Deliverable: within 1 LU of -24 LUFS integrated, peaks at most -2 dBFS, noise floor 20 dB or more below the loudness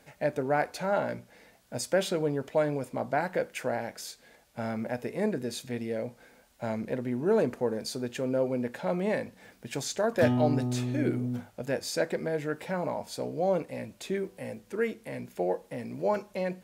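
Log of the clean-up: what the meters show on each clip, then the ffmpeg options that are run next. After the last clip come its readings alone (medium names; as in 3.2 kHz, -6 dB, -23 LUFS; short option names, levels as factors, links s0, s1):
loudness -31.0 LUFS; peak level -11.5 dBFS; loudness target -24.0 LUFS
-> -af "volume=2.24"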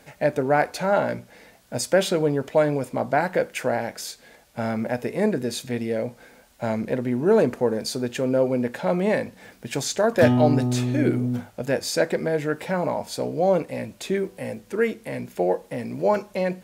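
loudness -24.0 LUFS; peak level -4.5 dBFS; noise floor -54 dBFS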